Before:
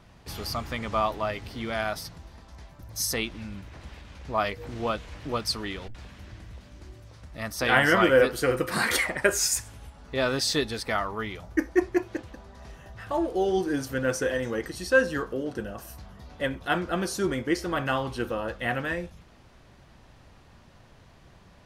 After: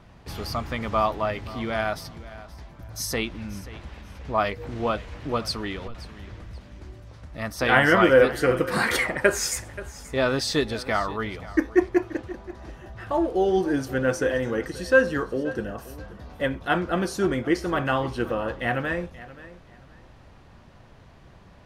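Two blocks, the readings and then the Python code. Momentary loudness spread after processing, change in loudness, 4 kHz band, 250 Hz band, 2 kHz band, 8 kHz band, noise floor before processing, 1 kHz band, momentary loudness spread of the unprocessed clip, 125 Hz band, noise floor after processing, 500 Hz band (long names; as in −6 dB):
21 LU, +2.5 dB, −0.5 dB, +3.5 dB, +2.0 dB, −2.5 dB, −54 dBFS, +3.0 dB, 22 LU, +3.5 dB, −50 dBFS, +3.5 dB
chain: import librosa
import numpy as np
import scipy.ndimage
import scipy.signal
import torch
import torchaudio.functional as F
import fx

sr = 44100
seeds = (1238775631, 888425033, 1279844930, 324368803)

y = fx.high_shelf(x, sr, hz=3500.0, db=-7.5)
y = fx.echo_feedback(y, sr, ms=530, feedback_pct=23, wet_db=-17.5)
y = y * 10.0 ** (3.5 / 20.0)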